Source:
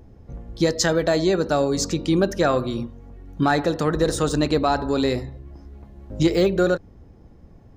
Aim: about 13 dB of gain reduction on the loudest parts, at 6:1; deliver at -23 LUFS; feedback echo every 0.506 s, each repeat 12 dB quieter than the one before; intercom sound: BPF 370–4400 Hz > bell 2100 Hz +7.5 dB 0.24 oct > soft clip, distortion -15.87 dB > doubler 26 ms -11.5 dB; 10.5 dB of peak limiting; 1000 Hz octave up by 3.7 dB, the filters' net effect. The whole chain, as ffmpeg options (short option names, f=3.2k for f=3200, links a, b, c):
-filter_complex "[0:a]equalizer=f=1k:t=o:g=5.5,acompressor=threshold=-28dB:ratio=6,alimiter=level_in=3dB:limit=-24dB:level=0:latency=1,volume=-3dB,highpass=370,lowpass=4.4k,equalizer=f=2.1k:t=o:w=0.24:g=7.5,aecho=1:1:506|1012|1518:0.251|0.0628|0.0157,asoftclip=threshold=-33dB,asplit=2[a][b];[b]adelay=26,volume=-11.5dB[c];[a][c]amix=inputs=2:normalize=0,volume=19dB"